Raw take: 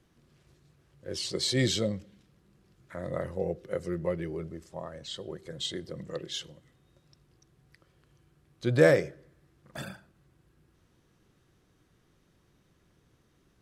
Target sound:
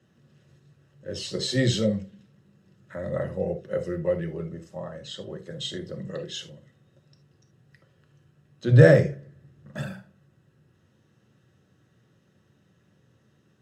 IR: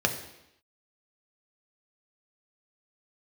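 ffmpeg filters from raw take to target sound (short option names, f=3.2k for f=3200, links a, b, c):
-filter_complex "[0:a]asettb=1/sr,asplit=3[a][b][c];[a]atrim=end=8.704[d];[b]atrim=start=8.7:end=9.81,asetpts=PTS-STARTPTS,afade=t=in:d=0.004:c=qsin,afade=t=out:st=1.106:d=0.004:c=qsin,lowshelf=f=250:g=8.5[e];[c]atrim=start=9.806[f];[d][e]acrossfade=d=0.004:c1=hsin:c2=qsin[g];[g][f]acrossfade=d=0.004:c1=qsin:c2=hsin[h];[1:a]atrim=start_sample=2205,afade=t=out:st=0.14:d=0.01,atrim=end_sample=6615,asetrate=48510,aresample=44100[i];[h][i]afir=irnorm=-1:irlink=0,volume=-8dB"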